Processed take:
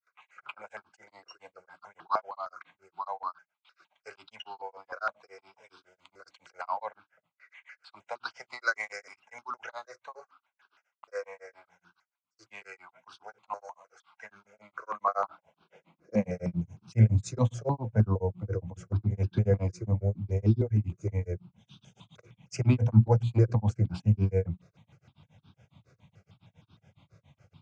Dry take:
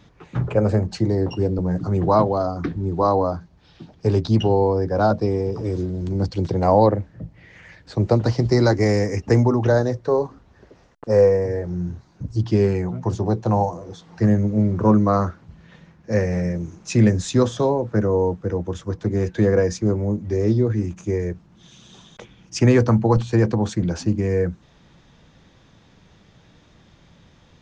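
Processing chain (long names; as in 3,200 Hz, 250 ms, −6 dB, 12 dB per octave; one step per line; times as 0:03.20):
mains-hum notches 60/120/180/240/300/360 Hz
granular cloud 136 ms, grains 7.2 per second, spray 33 ms, pitch spread up and down by 0 semitones
high-pass filter sweep 1,400 Hz → 110 Hz, 0:14.86–0:16.65
noise gate with hold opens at −50 dBFS
Butterworth band-reject 1,800 Hz, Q 6.3
step-sequenced phaser 6.5 Hz 870–2,000 Hz
level −3 dB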